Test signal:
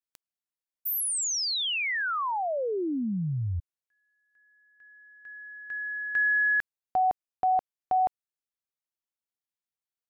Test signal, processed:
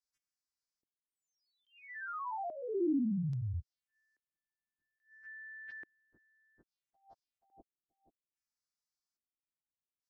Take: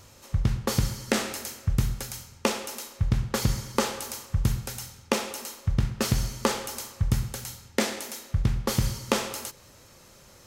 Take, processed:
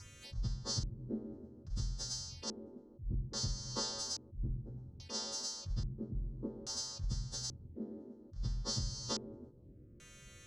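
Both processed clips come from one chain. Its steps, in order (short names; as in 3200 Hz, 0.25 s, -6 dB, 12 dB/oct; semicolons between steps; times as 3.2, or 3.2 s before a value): frequency quantiser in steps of 2 st; low shelf 210 Hz +10 dB; compressor 5:1, threshold -30 dBFS; envelope phaser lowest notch 480 Hz, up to 2400 Hz, full sweep at -33.5 dBFS; LFO low-pass square 0.6 Hz 330–5200 Hz; attack slew limiter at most 200 dB/s; gain -5.5 dB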